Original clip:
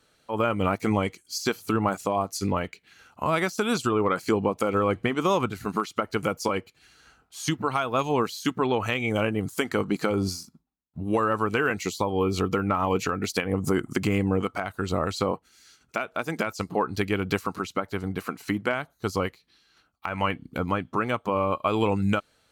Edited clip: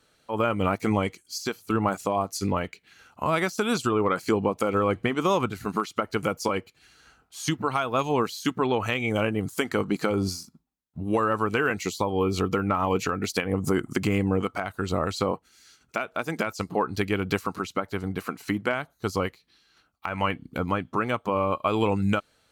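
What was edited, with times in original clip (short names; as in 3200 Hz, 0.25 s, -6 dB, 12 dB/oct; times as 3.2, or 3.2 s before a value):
1.19–1.7 fade out, to -8.5 dB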